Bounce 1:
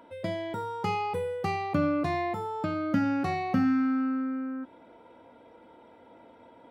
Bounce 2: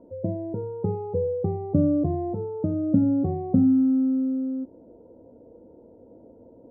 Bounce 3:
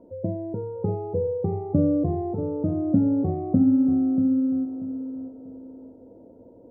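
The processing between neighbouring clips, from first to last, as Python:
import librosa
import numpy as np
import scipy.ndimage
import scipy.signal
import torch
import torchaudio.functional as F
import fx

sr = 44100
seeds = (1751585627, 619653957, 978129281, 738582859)

y1 = scipy.signal.sosfilt(scipy.signal.cheby1(3, 1.0, 510.0, 'lowpass', fs=sr, output='sos'), x)
y1 = fx.low_shelf(y1, sr, hz=76.0, db=8.0)
y1 = y1 * librosa.db_to_amplitude(6.5)
y2 = fx.echo_feedback(y1, sr, ms=637, feedback_pct=30, wet_db=-10)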